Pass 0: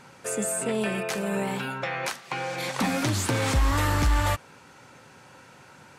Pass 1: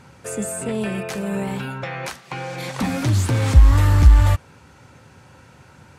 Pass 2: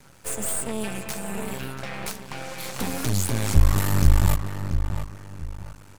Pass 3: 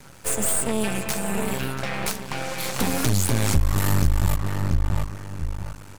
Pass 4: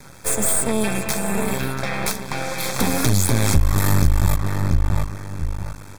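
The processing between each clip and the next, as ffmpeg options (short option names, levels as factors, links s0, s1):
-af "lowshelf=f=380:g=4,acontrast=77,equalizer=f=70:t=o:w=1.4:g=13.5,volume=0.422"
-filter_complex "[0:a]aemphasis=mode=production:type=50fm,asplit=2[s0][s1];[s1]adelay=684,lowpass=f=2600:p=1,volume=0.398,asplit=2[s2][s3];[s3]adelay=684,lowpass=f=2600:p=1,volume=0.33,asplit=2[s4][s5];[s5]adelay=684,lowpass=f=2600:p=1,volume=0.33,asplit=2[s6][s7];[s7]adelay=684,lowpass=f=2600:p=1,volume=0.33[s8];[s0][s2][s4][s6][s8]amix=inputs=5:normalize=0,aeval=exprs='max(val(0),0)':c=same,volume=0.794"
-af "acompressor=threshold=0.1:ratio=6,volume=1.88"
-af "asuperstop=centerf=2900:order=12:qfactor=6.9,volume=1.5"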